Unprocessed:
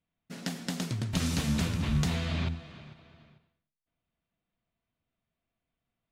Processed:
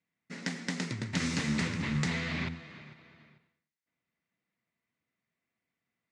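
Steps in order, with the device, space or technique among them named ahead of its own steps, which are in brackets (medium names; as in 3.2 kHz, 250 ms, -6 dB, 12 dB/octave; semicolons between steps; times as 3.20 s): full-range speaker at full volume (loudspeaker Doppler distortion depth 0.25 ms; cabinet simulation 150–8000 Hz, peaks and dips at 680 Hz -6 dB, 2 kHz +10 dB, 3.2 kHz -4 dB)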